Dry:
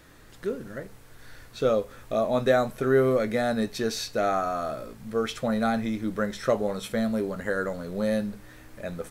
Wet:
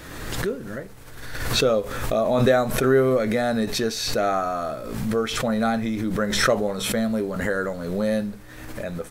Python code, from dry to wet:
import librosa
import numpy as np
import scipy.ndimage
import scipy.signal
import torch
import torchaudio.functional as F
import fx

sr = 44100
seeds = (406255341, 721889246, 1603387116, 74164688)

y = fx.pre_swell(x, sr, db_per_s=41.0)
y = y * 10.0 ** (2.5 / 20.0)